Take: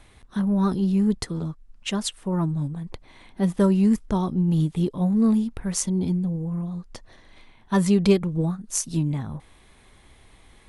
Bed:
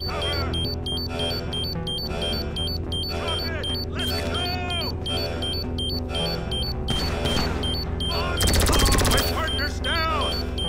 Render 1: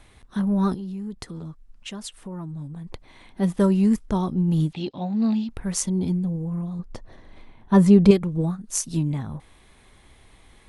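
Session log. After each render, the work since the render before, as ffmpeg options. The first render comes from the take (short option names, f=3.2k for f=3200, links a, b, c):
-filter_complex "[0:a]asettb=1/sr,asplit=3[a][b][c];[a]atrim=end=0.744[d];[b]atrim=start=0.74:end=2.92,asetpts=PTS-STARTPTS,afade=t=in:d=0.004:c=qsin,afade=t=out:st=2.176:d=0.004:c=qsin,acompressor=threshold=-34dB:ratio=3:attack=3.2:release=140:knee=1:detection=peak[e];[c]atrim=start=2.916[f];[d][e]acrossfade=d=0.004:c1=hsin:c2=qsin[g];[g][f]acrossfade=d=0.004:c1=qsin:c2=hsin,asettb=1/sr,asplit=3[h][i][j];[h]atrim=end=4.734[k];[i]atrim=start=4.73:end=5.49,asetpts=PTS-STARTPTS,afade=t=in:d=0.004:c=qsin,afade=t=out:st=0.756:d=0.004:c=qsin,highpass=120,equalizer=f=170:t=q:w=4:g=-9,equalizer=f=440:t=q:w=4:g=-10,equalizer=f=780:t=q:w=4:g=6,equalizer=f=1.1k:t=q:w=4:g=-7,equalizer=f=2.7k:t=q:w=4:g=9,equalizer=f=4.2k:t=q:w=4:g=9,lowpass=f=5.6k:w=0.5412,lowpass=f=5.6k:w=1.3066[l];[j]atrim=start=5.486[m];[k][l]acrossfade=d=0.004:c1=hsin:c2=qsin[n];[n][m]acrossfade=d=0.004:c1=qsin:c2=hsin,asettb=1/sr,asplit=3[o][p][q];[o]atrim=end=6.794[r];[p]atrim=start=6.79:end=8.11,asetpts=PTS-STARTPTS,afade=t=in:d=0.004:c=qsin,afade=t=out:st=1.316:d=0.004:c=qsin,tiltshelf=f=1.4k:g=6[s];[q]atrim=start=8.106[t];[r][s]acrossfade=d=0.004:c1=hsin:c2=qsin[u];[u][t]acrossfade=d=0.004:c1=qsin:c2=hsin"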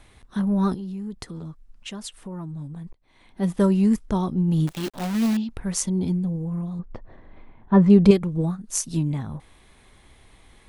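-filter_complex "[0:a]asettb=1/sr,asplit=3[a][b][c];[a]atrim=end=4.674[d];[b]atrim=start=4.67:end=5.37,asetpts=PTS-STARTPTS,afade=t=in:d=0.004:c=qsin,afade=t=out:st=0.696:d=0.004:c=qsin,acrusher=bits=6:dc=4:mix=0:aa=0.000001[e];[c]atrim=start=5.366[f];[d][e]acrossfade=d=0.004:c1=hsin:c2=qsin[g];[g][f]acrossfade=d=0.004:c1=qsin:c2=hsin,asettb=1/sr,asplit=3[h][i][j];[h]atrim=end=6.794[k];[i]atrim=start=6.79:end=7.9,asetpts=PTS-STARTPTS,afade=t=in:d=0.004:c=qsin,afade=t=out:st=1.106:d=0.004:c=qsin,lowpass=2.1k[l];[j]atrim=start=7.896[m];[k][l]acrossfade=d=0.004:c1=hsin:c2=qsin[n];[n][m]acrossfade=d=0.004:c1=qsin:c2=hsin,asplit=2[o][p];[o]atrim=end=2.93,asetpts=PTS-STARTPTS,afade=t=out:st=2.926:d=0.004:c=hsin[q];[p]atrim=start=2.93,asetpts=PTS-STARTPTS,afade=t=in:d=0.61[r];[q][r]concat=n=2:v=0:a=1"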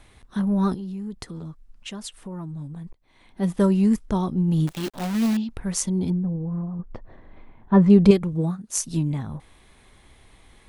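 -filter_complex "[0:a]asettb=1/sr,asplit=3[a][b][c];[a]atrim=end=6.104[d];[b]atrim=start=6.1:end=6.86,asetpts=PTS-STARTPTS,afade=t=in:d=0.004:c=qsin,afade=t=out:st=0.756:d=0.004:c=qsin,lowpass=f=1.7k:w=0.5412,lowpass=f=1.7k:w=1.3066[e];[c]atrim=start=6.856[f];[d][e]acrossfade=d=0.004:c1=hsin:c2=qsin[g];[g][f]acrossfade=d=0.004:c1=qsin:c2=hsin,asettb=1/sr,asplit=3[h][i][j];[h]atrim=end=8.334[k];[i]atrim=start=8.33:end=8.78,asetpts=PTS-STARTPTS,afade=t=in:d=0.004:c=qsin,afade=t=out:st=0.446:d=0.004:c=qsin,highpass=65[l];[j]atrim=start=8.776[m];[k][l]acrossfade=d=0.004:c1=hsin:c2=qsin[n];[n][m]acrossfade=d=0.004:c1=qsin:c2=hsin"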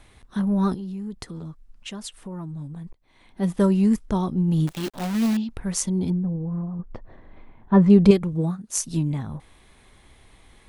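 -af anull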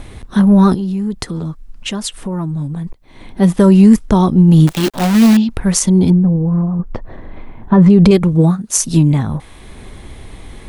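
-filter_complex "[0:a]acrossover=split=550[a][b];[a]acompressor=mode=upward:threshold=-37dB:ratio=2.5[c];[c][b]amix=inputs=2:normalize=0,alimiter=level_in=13.5dB:limit=-1dB:release=50:level=0:latency=1"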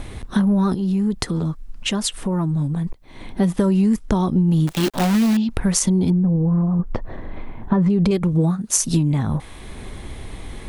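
-af "acompressor=threshold=-15dB:ratio=6"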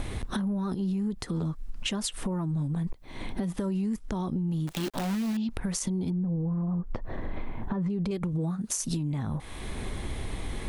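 -af "alimiter=limit=-16.5dB:level=0:latency=1:release=290,acompressor=threshold=-27dB:ratio=6"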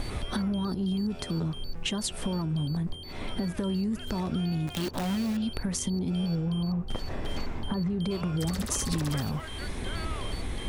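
-filter_complex "[1:a]volume=-16dB[a];[0:a][a]amix=inputs=2:normalize=0"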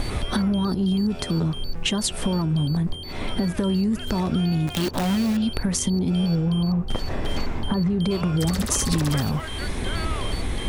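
-af "volume=7dB"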